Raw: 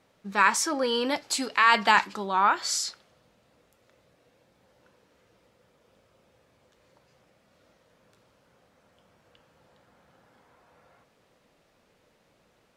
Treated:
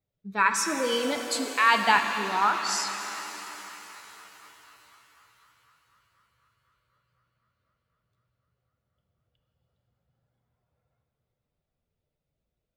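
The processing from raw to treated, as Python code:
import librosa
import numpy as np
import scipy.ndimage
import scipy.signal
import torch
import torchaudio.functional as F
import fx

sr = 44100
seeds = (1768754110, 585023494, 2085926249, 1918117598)

y = fx.bin_expand(x, sr, power=1.5)
y = fx.echo_banded(y, sr, ms=250, feedback_pct=82, hz=1300.0, wet_db=-23)
y = fx.rev_shimmer(y, sr, seeds[0], rt60_s=3.9, semitones=7, shimmer_db=-8, drr_db=5.5)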